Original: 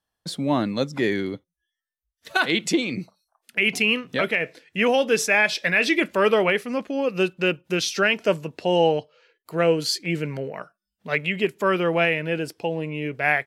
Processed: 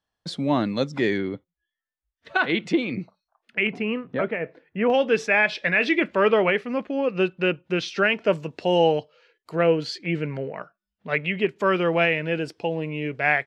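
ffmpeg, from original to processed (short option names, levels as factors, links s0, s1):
-af "asetnsamples=n=441:p=0,asendcmd='1.18 lowpass f 2600;3.67 lowpass f 1300;4.9 lowpass f 3000;8.33 lowpass f 6500;9.56 lowpass f 3100;11.56 lowpass f 5500',lowpass=5900"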